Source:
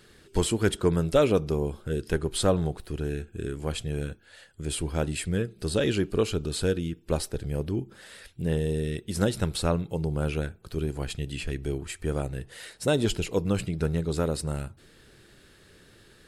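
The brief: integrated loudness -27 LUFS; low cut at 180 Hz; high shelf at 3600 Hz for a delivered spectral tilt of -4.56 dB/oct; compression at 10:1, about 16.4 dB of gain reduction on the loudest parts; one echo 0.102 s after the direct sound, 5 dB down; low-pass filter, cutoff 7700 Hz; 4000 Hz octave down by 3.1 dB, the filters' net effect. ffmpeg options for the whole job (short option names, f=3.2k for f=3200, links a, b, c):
-af "highpass=180,lowpass=7.7k,highshelf=f=3.6k:g=6.5,equalizer=f=4k:t=o:g=-8,acompressor=threshold=-34dB:ratio=10,aecho=1:1:102:0.562,volume=12dB"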